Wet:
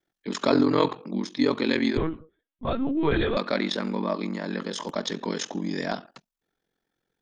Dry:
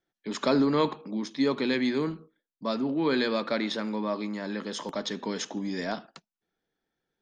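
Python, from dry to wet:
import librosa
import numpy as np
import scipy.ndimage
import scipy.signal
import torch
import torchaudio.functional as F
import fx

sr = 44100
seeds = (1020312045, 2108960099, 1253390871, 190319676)

y = x * np.sin(2.0 * np.pi * 22.0 * np.arange(len(x)) / sr)
y = fx.lpc_vocoder(y, sr, seeds[0], excitation='pitch_kept', order=16, at=(1.97, 3.37))
y = y * 10.0 ** (5.5 / 20.0)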